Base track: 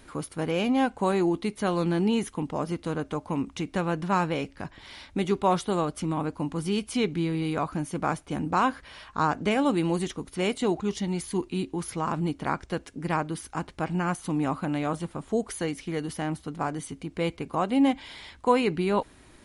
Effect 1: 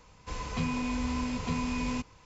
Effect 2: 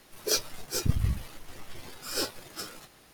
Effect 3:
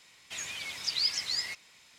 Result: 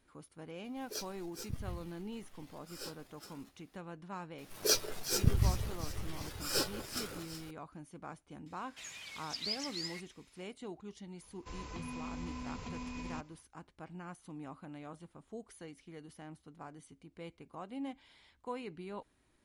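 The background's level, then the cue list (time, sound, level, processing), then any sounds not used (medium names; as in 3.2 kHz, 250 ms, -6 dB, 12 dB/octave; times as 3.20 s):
base track -19.5 dB
0.64 s: add 2 -15 dB
4.38 s: add 2 -2 dB + echo whose repeats swap between lows and highs 187 ms, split 1.6 kHz, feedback 77%, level -10.5 dB
8.46 s: add 3 -9.5 dB
11.19 s: add 1 -9 dB, fades 0.05 s + peak limiter -25.5 dBFS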